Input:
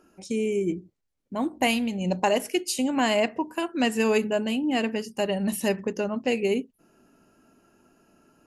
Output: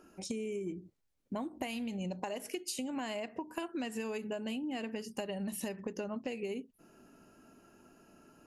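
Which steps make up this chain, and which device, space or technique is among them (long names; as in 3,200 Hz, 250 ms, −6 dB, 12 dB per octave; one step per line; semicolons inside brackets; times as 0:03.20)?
serial compression, leveller first (downward compressor 2.5 to 1, threshold −25 dBFS, peak gain reduction 5.5 dB; downward compressor 10 to 1, threshold −35 dBFS, peak gain reduction 13 dB)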